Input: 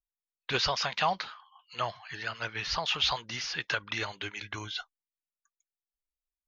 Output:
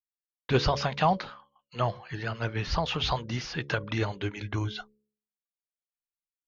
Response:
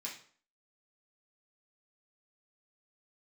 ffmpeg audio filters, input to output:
-af "agate=range=-33dB:threshold=-48dB:ratio=3:detection=peak,tiltshelf=frequency=710:gain=9.5,bandreject=frequency=70.86:width_type=h:width=4,bandreject=frequency=141.72:width_type=h:width=4,bandreject=frequency=212.58:width_type=h:width=4,bandreject=frequency=283.44:width_type=h:width=4,bandreject=frequency=354.3:width_type=h:width=4,bandreject=frequency=425.16:width_type=h:width=4,bandreject=frequency=496.02:width_type=h:width=4,bandreject=frequency=566.88:width_type=h:width=4,volume=5dB"

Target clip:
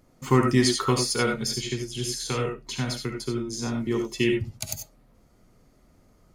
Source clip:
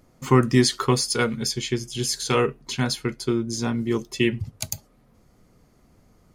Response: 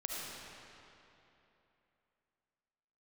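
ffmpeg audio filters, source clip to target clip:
-filter_complex "[0:a]asettb=1/sr,asplit=3[link_01][link_02][link_03];[link_01]atrim=end=1.524[link_04];[link_02]atrim=start=1.52:end=3.87,asetpts=PTS-STARTPTS,afade=type=in:duration=0.004:curve=qsin,afade=type=out:start_time=2.346:duration=0.004:curve=qsin,acrossover=split=180[link_05][link_06];[link_06]acompressor=threshold=-27dB:ratio=2.5[link_07];[link_05][link_07]amix=inputs=2:normalize=0[link_08];[link_03]atrim=start=3.866[link_09];[link_04][link_08]acrossfade=duration=0.004:curve1=hsin:curve2=qsin[link_10];[link_10][link_09]acrossfade=duration=0.004:curve1=qsin:curve2=hsin[link_11];[1:a]atrim=start_sample=2205,atrim=end_sample=4410[link_12];[link_11][link_12]afir=irnorm=-1:irlink=0"

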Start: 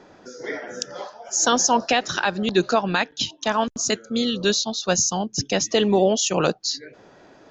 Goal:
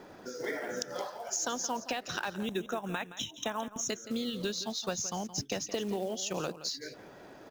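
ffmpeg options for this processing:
ffmpeg -i in.wav -filter_complex "[0:a]highshelf=frequency=4400:gain=-2.5,acompressor=threshold=-30dB:ratio=8,acrusher=bits=5:mode=log:mix=0:aa=0.000001,asettb=1/sr,asplit=3[link_01][link_02][link_03];[link_01]atrim=end=2.354[link_04];[link_02]atrim=start=2.35:end=3.89,asetpts=PTS-STARTPTS,afade=type=in:duration=0.004:curve=qsin,afade=type=out:start_time=1.536:duration=0.004:curve=qsin,asuperstop=centerf=4600:order=12:qfactor=3[link_05];[link_03]atrim=start=3.886[link_06];[link_04][link_05]acrossfade=duration=0.004:curve1=hsin:curve2=qsin[link_07];[link_07][link_06]acrossfade=duration=0.004:curve1=qsin:curve2=hsin,asplit=2[link_08][link_09];[link_09]aecho=0:1:170:0.2[link_10];[link_08][link_10]amix=inputs=2:normalize=0,volume=-1.5dB" out.wav

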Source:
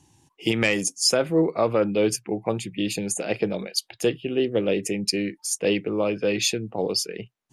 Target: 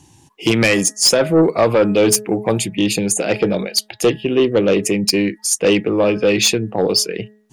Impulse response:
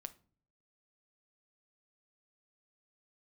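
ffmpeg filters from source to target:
-filter_complex "[0:a]asettb=1/sr,asplit=3[link_01][link_02][link_03];[link_01]atrim=end=1.424[link_04];[link_02]atrim=start=1.42:end=2.68,asetpts=PTS-STARTPTS,afade=type=in:duration=0.004:curve=qsin,afade=type=out:start_time=1.256:duration=0.004:curve=qsin,highshelf=frequency=7400:gain=11.5[link_05];[link_03]atrim=start=2.676[link_06];[link_04][link_05]acrossfade=duration=0.004:curve1=hsin:curve2=qsin[link_07];[link_07][link_06]acrossfade=duration=0.004:curve1=qsin:curve2=hsin,bandreject=frequency=211.9:width_type=h:width=4,bandreject=frequency=423.8:width_type=h:width=4,bandreject=frequency=635.7:width_type=h:width=4,bandreject=frequency=847.6:width_type=h:width=4,bandreject=frequency=1059.5:width_type=h:width=4,bandreject=frequency=1271.4:width_type=h:width=4,bandreject=frequency=1483.3:width_type=h:width=4,bandreject=frequency=1695.2:width_type=h:width=4,bandreject=frequency=1907.1:width_type=h:width=4,aeval=exprs='0.447*sin(PI/2*2*val(0)/0.447)':channel_layout=same"

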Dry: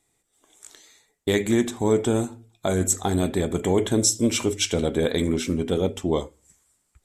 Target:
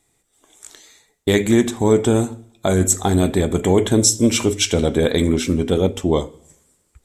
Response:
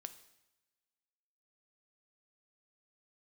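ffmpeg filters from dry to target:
-filter_complex "[0:a]asplit=2[link_01][link_02];[link_02]lowshelf=frequency=190:gain=8[link_03];[1:a]atrim=start_sample=2205[link_04];[link_03][link_04]afir=irnorm=-1:irlink=0,volume=-3.5dB[link_05];[link_01][link_05]amix=inputs=2:normalize=0,volume=2.5dB"

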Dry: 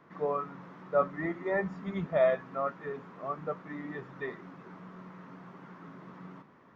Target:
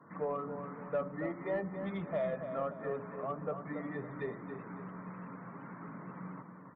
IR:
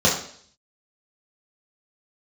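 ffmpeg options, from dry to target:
-filter_complex "[0:a]acrossover=split=350|970[link_01][link_02][link_03];[link_01]acompressor=threshold=-43dB:ratio=4[link_04];[link_02]acompressor=threshold=-36dB:ratio=4[link_05];[link_03]acompressor=threshold=-50dB:ratio=4[link_06];[link_04][link_05][link_06]amix=inputs=3:normalize=0,bandreject=frequency=370:width=12,asplit=2[link_07][link_08];[1:a]atrim=start_sample=2205,asetrate=25137,aresample=44100[link_09];[link_08][link_09]afir=irnorm=-1:irlink=0,volume=-39dB[link_10];[link_07][link_10]amix=inputs=2:normalize=0,afftfilt=real='re*gte(hypot(re,im),0.00126)':imag='im*gte(hypot(re,im),0.00126)':win_size=1024:overlap=0.75,acontrast=58,asoftclip=type=tanh:threshold=-19.5dB,asplit=2[link_11][link_12];[link_12]adelay=279,lowpass=frequency=3000:poles=1,volume=-8dB,asplit=2[link_13][link_14];[link_14]adelay=279,lowpass=frequency=3000:poles=1,volume=0.4,asplit=2[link_15][link_16];[link_16]adelay=279,lowpass=frequency=3000:poles=1,volume=0.4,asplit=2[link_17][link_18];[link_18]adelay=279,lowpass=frequency=3000:poles=1,volume=0.4,asplit=2[link_19][link_20];[link_20]adelay=279,lowpass=frequency=3000:poles=1,volume=0.4[link_21];[link_11][link_13][link_15][link_17][link_19][link_21]amix=inputs=6:normalize=0,volume=-4.5dB"

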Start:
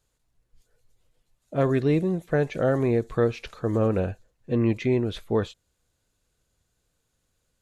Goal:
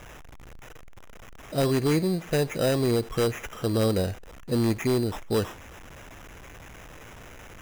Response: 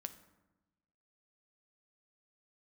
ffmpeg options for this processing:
-filter_complex "[0:a]aeval=exprs='val(0)+0.5*0.0126*sgn(val(0))':channel_layout=same,asettb=1/sr,asplit=3[link_01][link_02][link_03];[link_01]atrim=end=1.764[link_04];[link_02]atrim=start=1.76:end=2.28,asetpts=PTS-STARTPTS,afade=type=in:duration=0.004:curve=qsin,afade=type=out:start_time=0.516:duration=0.004:curve=qsin,equalizer=frequency=2100:width=4.2:gain=8[link_05];[link_03]atrim=start=2.276[link_06];[link_04][link_05]acrossfade=duration=0.004:curve1=hsin:curve2=qsin[link_07];[link_07][link_06]acrossfade=duration=0.004:curve1=qsin:curve2=hsin,acrusher=samples=10:mix=1:aa=0.000001,aeval=exprs='0.158*(abs(mod(val(0)/0.158+3,4)-2)-1)':channel_layout=same,volume=-1dB"

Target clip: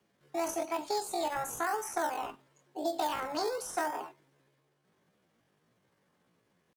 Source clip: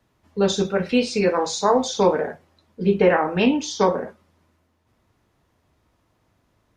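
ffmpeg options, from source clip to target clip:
ffmpeg -i in.wav -filter_complex "[0:a]highpass=89,asplit=2[link_01][link_02];[link_02]acrusher=samples=35:mix=1:aa=0.000001:lfo=1:lforange=35:lforate=0.95,volume=-11dB[link_03];[link_01][link_03]amix=inputs=2:normalize=0,asetrate=74167,aresample=44100,atempo=0.594604,acrossover=split=530|1500|5500[link_04][link_05][link_06][link_07];[link_04]acompressor=threshold=-35dB:ratio=4[link_08];[link_05]acompressor=threshold=-26dB:ratio=4[link_09];[link_06]acompressor=threshold=-40dB:ratio=4[link_10];[link_07]acompressor=threshold=-34dB:ratio=4[link_11];[link_08][link_09][link_10][link_11]amix=inputs=4:normalize=0,volume=-7dB" out.wav

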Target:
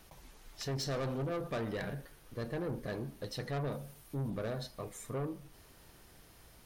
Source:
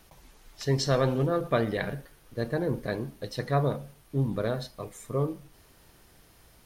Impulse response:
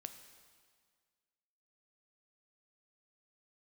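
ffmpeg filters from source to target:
-filter_complex "[0:a]asettb=1/sr,asplit=3[link_01][link_02][link_03];[link_01]atrim=end=3.724[link_04];[link_02]atrim=start=3.72:end=4.3,asetpts=PTS-STARTPTS,afade=type=in:duration=0.004:curve=qsin,afade=type=out:start_time=0.576:duration=0.004:curve=qsin,highshelf=frequency=6500:gain=7.5[link_05];[link_03]atrim=start=4.296[link_06];[link_04][link_05]acrossfade=duration=0.004:curve1=hsin:curve2=qsin[link_07];[link_07][link_06]acrossfade=duration=0.004:curve1=qsin:curve2=hsin,asplit=2[link_08][link_09];[link_09]acompressor=threshold=-36dB:ratio=6,volume=-1.5dB[link_10];[link_08][link_10]amix=inputs=2:normalize=0,asoftclip=type=tanh:threshold=-25.5dB,volume=-6.5dB"

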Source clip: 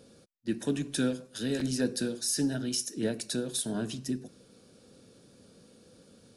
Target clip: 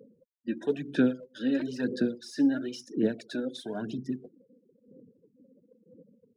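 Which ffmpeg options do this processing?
ffmpeg -i in.wav -af "afftfilt=real='re*gte(hypot(re,im),0.00631)':imag='im*gte(hypot(re,im),0.00631)':win_size=1024:overlap=0.75,highpass=200,lowpass=2500,aphaser=in_gain=1:out_gain=1:delay=3.8:decay=0.61:speed=1:type=sinusoidal" out.wav

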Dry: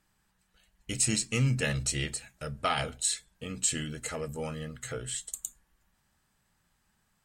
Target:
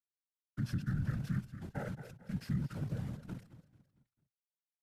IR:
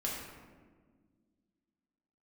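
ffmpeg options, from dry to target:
-filter_complex "[0:a]asplit=3[link_01][link_02][link_03];[link_01]bandpass=frequency=300:width_type=q:width=8,volume=0dB[link_04];[link_02]bandpass=frequency=870:width_type=q:width=8,volume=-6dB[link_05];[link_03]bandpass=frequency=2240:width_type=q:width=8,volume=-9dB[link_06];[link_04][link_05][link_06]amix=inputs=3:normalize=0,atempo=1.5,lowshelf=frequency=260:gain=4.5,aeval=exprs='val(0)*gte(abs(val(0)),0.00211)':channel_layout=same,agate=range=-33dB:threshold=-57dB:ratio=3:detection=peak,aecho=1:1:222|444|666|888:0.178|0.0729|0.0299|0.0123,afreqshift=-29,asetrate=28595,aresample=44100,atempo=1.54221,afftfilt=real='hypot(re,im)*cos(2*PI*random(0))':imag='hypot(re,im)*sin(2*PI*random(1))':win_size=512:overlap=0.75,alimiter=level_in=21dB:limit=-24dB:level=0:latency=1:release=68,volume=-21dB,equalizer=frequency=130:width_type=o:width=1.1:gain=12,volume=11.5dB"

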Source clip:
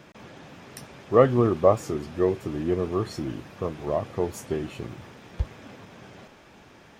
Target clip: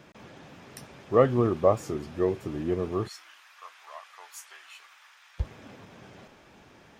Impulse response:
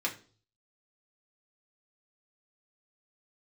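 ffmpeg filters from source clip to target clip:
-filter_complex "[0:a]asplit=3[link_01][link_02][link_03];[link_01]afade=type=out:start_time=3.07:duration=0.02[link_04];[link_02]highpass=frequency=1100:width=0.5412,highpass=frequency=1100:width=1.3066,afade=type=in:start_time=3.07:duration=0.02,afade=type=out:start_time=5.38:duration=0.02[link_05];[link_03]afade=type=in:start_time=5.38:duration=0.02[link_06];[link_04][link_05][link_06]amix=inputs=3:normalize=0,volume=-3dB"

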